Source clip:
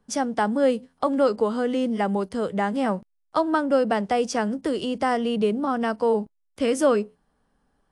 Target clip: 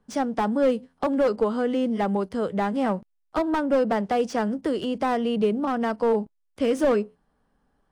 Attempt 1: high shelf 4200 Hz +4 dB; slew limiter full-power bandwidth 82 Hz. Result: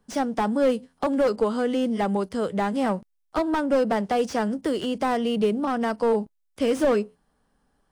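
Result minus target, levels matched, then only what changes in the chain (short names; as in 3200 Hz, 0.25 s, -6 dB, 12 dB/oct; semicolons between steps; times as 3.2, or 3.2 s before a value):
8000 Hz band +3.0 dB
change: high shelf 4200 Hz -6.5 dB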